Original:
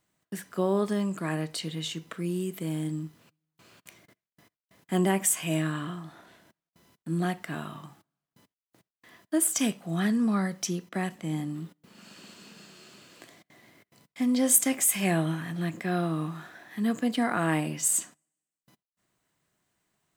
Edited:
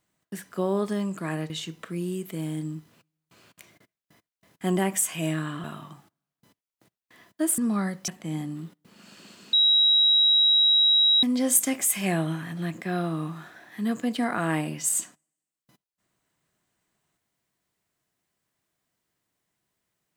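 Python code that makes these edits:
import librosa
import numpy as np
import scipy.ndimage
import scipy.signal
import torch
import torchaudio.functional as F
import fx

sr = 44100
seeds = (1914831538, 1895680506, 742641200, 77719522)

y = fx.edit(x, sr, fx.cut(start_s=1.5, length_s=0.28),
    fx.cut(start_s=5.92, length_s=1.65),
    fx.cut(start_s=9.51, length_s=0.65),
    fx.cut(start_s=10.66, length_s=0.41),
    fx.bleep(start_s=12.52, length_s=1.7, hz=3850.0, db=-16.0), tone=tone)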